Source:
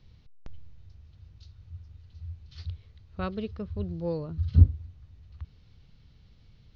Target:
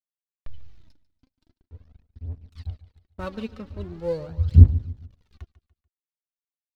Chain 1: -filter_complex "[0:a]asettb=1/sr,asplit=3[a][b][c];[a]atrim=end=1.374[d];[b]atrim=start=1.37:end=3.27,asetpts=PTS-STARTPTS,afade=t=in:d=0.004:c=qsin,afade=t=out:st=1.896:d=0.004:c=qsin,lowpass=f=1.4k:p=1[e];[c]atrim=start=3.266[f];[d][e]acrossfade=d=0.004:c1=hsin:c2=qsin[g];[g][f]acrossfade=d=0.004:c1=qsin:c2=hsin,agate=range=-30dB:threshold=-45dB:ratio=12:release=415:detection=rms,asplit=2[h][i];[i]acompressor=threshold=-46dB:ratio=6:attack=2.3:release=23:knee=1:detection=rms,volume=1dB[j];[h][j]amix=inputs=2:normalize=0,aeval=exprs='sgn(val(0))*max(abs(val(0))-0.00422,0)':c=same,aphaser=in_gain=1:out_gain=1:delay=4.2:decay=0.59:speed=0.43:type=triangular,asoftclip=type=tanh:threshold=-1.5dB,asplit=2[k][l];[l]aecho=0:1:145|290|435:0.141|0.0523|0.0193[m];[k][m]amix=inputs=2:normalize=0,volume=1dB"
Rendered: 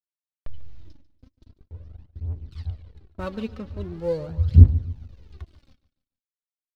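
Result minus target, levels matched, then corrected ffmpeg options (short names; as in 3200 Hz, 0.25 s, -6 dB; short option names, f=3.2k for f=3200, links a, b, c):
500 Hz band +3.0 dB
-filter_complex "[0:a]asettb=1/sr,asplit=3[a][b][c];[a]atrim=end=1.374[d];[b]atrim=start=1.37:end=3.27,asetpts=PTS-STARTPTS,afade=t=in:d=0.004:c=qsin,afade=t=out:st=1.896:d=0.004:c=qsin,lowpass=f=1.4k:p=1[e];[c]atrim=start=3.266[f];[d][e]acrossfade=d=0.004:c1=hsin:c2=qsin[g];[g][f]acrossfade=d=0.004:c1=qsin:c2=hsin,agate=range=-30dB:threshold=-45dB:ratio=12:release=415:detection=rms,asplit=2[h][i];[i]acompressor=threshold=-46dB:ratio=6:attack=2.3:release=23:knee=1:detection=rms,highpass=580,volume=1dB[j];[h][j]amix=inputs=2:normalize=0,aeval=exprs='sgn(val(0))*max(abs(val(0))-0.00422,0)':c=same,aphaser=in_gain=1:out_gain=1:delay=4.2:decay=0.59:speed=0.43:type=triangular,asoftclip=type=tanh:threshold=-1.5dB,asplit=2[k][l];[l]aecho=0:1:145|290|435:0.141|0.0523|0.0193[m];[k][m]amix=inputs=2:normalize=0,volume=1dB"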